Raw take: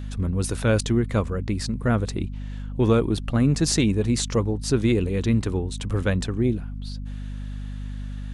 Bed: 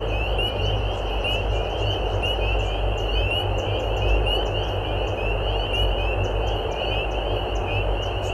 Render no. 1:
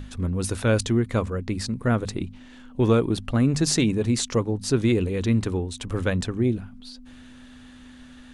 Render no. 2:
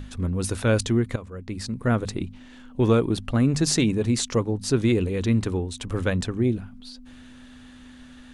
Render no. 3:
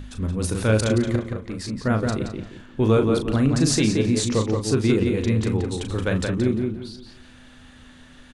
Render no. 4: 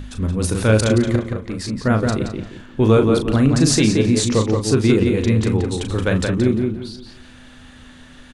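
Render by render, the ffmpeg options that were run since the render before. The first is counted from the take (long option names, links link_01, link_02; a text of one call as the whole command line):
ffmpeg -i in.wav -af "bandreject=frequency=50:width_type=h:width=6,bandreject=frequency=100:width_type=h:width=6,bandreject=frequency=150:width_type=h:width=6,bandreject=frequency=200:width_type=h:width=6" out.wav
ffmpeg -i in.wav -filter_complex "[0:a]asplit=2[link_01][link_02];[link_01]atrim=end=1.16,asetpts=PTS-STARTPTS,afade=type=out:start_time=1.156:duration=0.004:curve=hsin:silence=0.149624[link_03];[link_02]atrim=start=1.16,asetpts=PTS-STARTPTS,afade=type=in:duration=0.73:silence=0.149624[link_04];[link_03][link_04]concat=n=2:v=0:a=1" out.wav
ffmpeg -i in.wav -filter_complex "[0:a]asplit=2[link_01][link_02];[link_02]adelay=37,volume=-7.5dB[link_03];[link_01][link_03]amix=inputs=2:normalize=0,asplit=2[link_04][link_05];[link_05]adelay=174,lowpass=frequency=3500:poles=1,volume=-4dB,asplit=2[link_06][link_07];[link_07]adelay=174,lowpass=frequency=3500:poles=1,volume=0.31,asplit=2[link_08][link_09];[link_09]adelay=174,lowpass=frequency=3500:poles=1,volume=0.31,asplit=2[link_10][link_11];[link_11]adelay=174,lowpass=frequency=3500:poles=1,volume=0.31[link_12];[link_04][link_06][link_08][link_10][link_12]amix=inputs=5:normalize=0" out.wav
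ffmpeg -i in.wav -af "volume=4.5dB" out.wav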